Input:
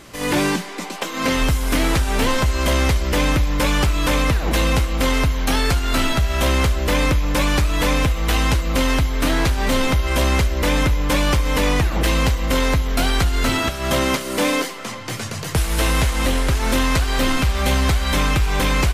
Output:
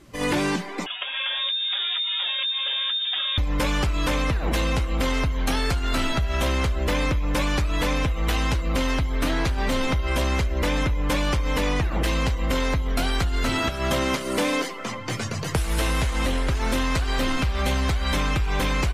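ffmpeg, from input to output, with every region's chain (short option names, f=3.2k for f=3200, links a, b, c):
-filter_complex "[0:a]asettb=1/sr,asplit=3[a][b][c];[a]atrim=end=0.864[d];[b]atrim=start=0.86:end=3.38,asetpts=PTS-STARTPTS,afade=t=in:d=0.004:c=qsin,afade=t=out:st=2.516:d=0.004:c=qsin,acompressor=threshold=-23dB:ratio=6:attack=3.2:release=140:knee=1:detection=peak,lowpass=f=3.1k:t=q:w=0.5098,lowpass=f=3.1k:t=q:w=0.6013,lowpass=f=3.1k:t=q:w=0.9,lowpass=f=3.1k:t=q:w=2.563,afreqshift=-3700[e];[c]atrim=start=3.376[f];[d][e]acrossfade=d=0.004:c1=hsin:c2=qsin[g];[g][f]acrossfade=d=0.004:c1=qsin:c2=hsin,afftdn=nr=13:nf=-35,acompressor=threshold=-20dB:ratio=6"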